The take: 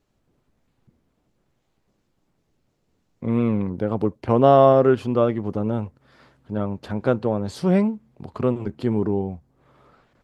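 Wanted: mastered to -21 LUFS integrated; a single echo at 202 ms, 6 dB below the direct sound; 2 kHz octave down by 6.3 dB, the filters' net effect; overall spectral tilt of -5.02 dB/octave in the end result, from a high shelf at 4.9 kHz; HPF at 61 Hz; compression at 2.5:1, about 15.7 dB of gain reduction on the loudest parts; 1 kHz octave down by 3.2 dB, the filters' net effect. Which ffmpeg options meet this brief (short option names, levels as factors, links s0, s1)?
-af "highpass=61,equalizer=f=1000:t=o:g=-3.5,equalizer=f=2000:t=o:g=-8.5,highshelf=f=4900:g=5,acompressor=threshold=0.0178:ratio=2.5,aecho=1:1:202:0.501,volume=4.73"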